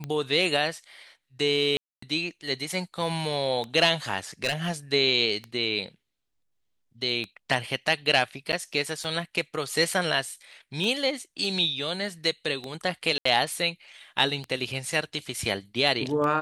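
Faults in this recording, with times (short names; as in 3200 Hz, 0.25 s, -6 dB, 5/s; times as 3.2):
tick 33 1/3 rpm -20 dBFS
1.77–2.02 gap 0.254 s
4.44–4.72 clipped -20.5 dBFS
8.52–8.53 gap 8.4 ms
13.18–13.25 gap 74 ms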